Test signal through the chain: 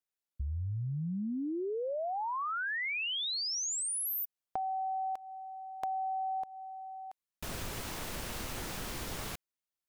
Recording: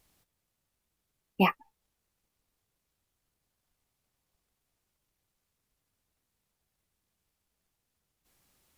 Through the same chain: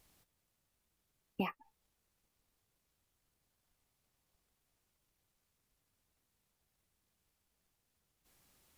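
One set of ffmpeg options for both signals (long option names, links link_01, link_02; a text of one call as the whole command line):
ffmpeg -i in.wav -af "acompressor=threshold=-33dB:ratio=12" out.wav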